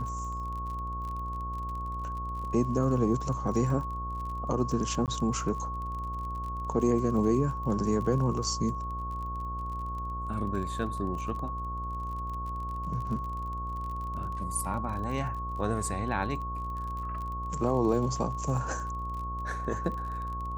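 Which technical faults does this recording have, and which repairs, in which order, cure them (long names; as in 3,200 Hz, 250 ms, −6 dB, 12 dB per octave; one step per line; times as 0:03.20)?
mains buzz 60 Hz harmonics 15 −37 dBFS
surface crackle 34 per second −37 dBFS
whistle 1,100 Hz −35 dBFS
0:05.06–0:05.08: drop-out 18 ms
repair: click removal
hum removal 60 Hz, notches 15
notch filter 1,100 Hz, Q 30
repair the gap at 0:05.06, 18 ms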